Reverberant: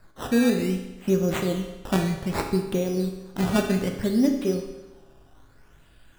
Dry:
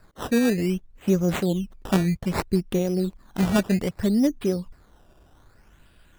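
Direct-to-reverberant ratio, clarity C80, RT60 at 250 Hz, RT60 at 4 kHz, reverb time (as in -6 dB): 3.0 dB, 8.5 dB, 1.1 s, 1.0 s, 1.1 s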